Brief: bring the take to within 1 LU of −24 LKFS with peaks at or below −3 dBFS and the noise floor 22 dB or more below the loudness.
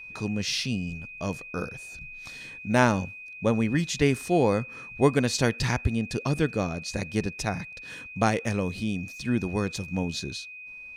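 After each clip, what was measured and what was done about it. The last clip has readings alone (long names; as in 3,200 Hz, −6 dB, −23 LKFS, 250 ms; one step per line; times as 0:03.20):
interfering tone 2,500 Hz; level of the tone −40 dBFS; integrated loudness −27.5 LKFS; sample peak −7.0 dBFS; target loudness −24.0 LKFS
→ notch filter 2,500 Hz, Q 30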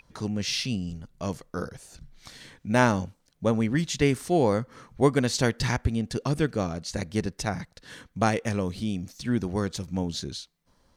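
interfering tone none found; integrated loudness −27.5 LKFS; sample peak −7.5 dBFS; target loudness −24.0 LKFS
→ level +3.5 dB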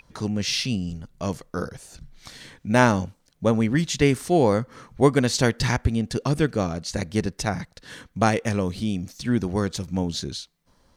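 integrated loudness −24.0 LKFS; sample peak −4.0 dBFS; background noise floor −64 dBFS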